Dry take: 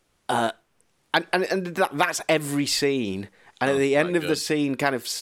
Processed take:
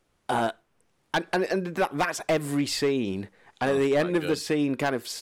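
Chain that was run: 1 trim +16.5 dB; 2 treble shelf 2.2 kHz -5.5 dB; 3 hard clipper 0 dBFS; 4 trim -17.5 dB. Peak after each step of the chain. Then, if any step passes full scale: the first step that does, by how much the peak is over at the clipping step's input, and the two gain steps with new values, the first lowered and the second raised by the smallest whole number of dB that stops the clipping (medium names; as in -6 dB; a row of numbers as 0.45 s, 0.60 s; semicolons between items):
+12.0 dBFS, +10.0 dBFS, 0.0 dBFS, -17.5 dBFS; step 1, 10.0 dB; step 1 +6.5 dB, step 4 -7.5 dB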